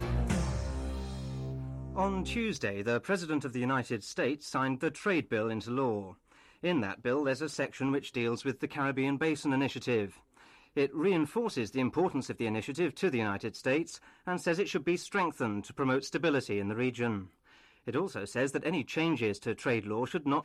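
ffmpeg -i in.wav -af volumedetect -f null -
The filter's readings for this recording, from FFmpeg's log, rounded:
mean_volume: -32.5 dB
max_volume: -18.7 dB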